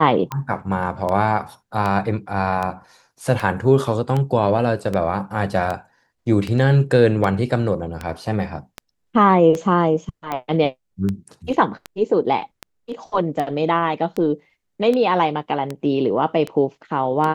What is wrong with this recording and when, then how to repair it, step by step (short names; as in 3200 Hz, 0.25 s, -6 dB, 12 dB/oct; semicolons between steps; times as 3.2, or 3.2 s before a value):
tick 78 rpm -12 dBFS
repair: de-click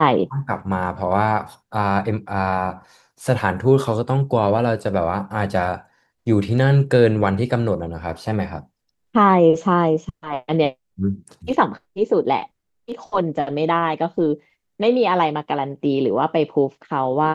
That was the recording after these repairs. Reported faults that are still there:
none